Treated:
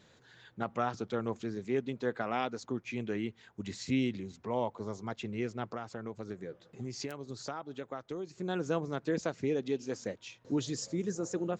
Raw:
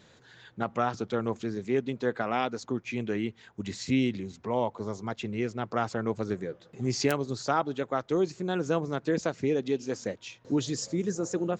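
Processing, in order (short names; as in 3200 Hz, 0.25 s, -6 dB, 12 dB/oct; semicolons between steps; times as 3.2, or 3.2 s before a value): 5.71–8.38 compressor, threshold -32 dBFS, peak gain reduction 11.5 dB; gain -4.5 dB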